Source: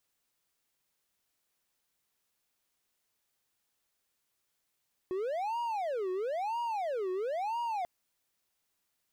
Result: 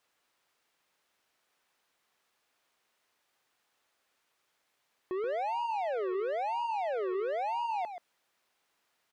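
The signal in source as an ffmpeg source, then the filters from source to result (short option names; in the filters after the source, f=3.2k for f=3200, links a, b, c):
-f lavfi -i "aevalsrc='0.0355*(1-4*abs(mod((658.5*t-291.5/(2*PI*1)*sin(2*PI*1*t))+0.25,1)-0.5))':d=2.74:s=44100"
-filter_complex "[0:a]asplit=2[a][b];[b]highpass=f=720:p=1,volume=18dB,asoftclip=type=tanh:threshold=-28.5dB[c];[a][c]amix=inputs=2:normalize=0,lowpass=f=1.6k:p=1,volume=-6dB,aecho=1:1:130:0.355"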